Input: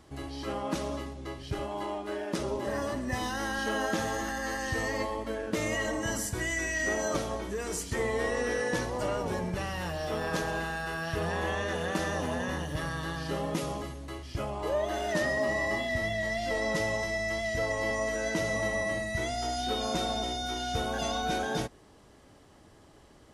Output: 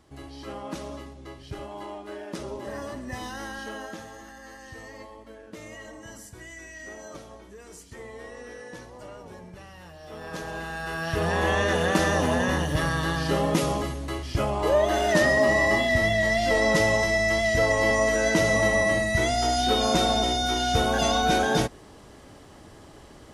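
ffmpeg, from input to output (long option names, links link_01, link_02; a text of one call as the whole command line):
ffmpeg -i in.wav -af "volume=17dB,afade=type=out:start_time=3.4:duration=0.68:silence=0.375837,afade=type=in:start_time=10.01:duration=0.65:silence=0.298538,afade=type=in:start_time=10.66:duration=0.95:silence=0.334965" out.wav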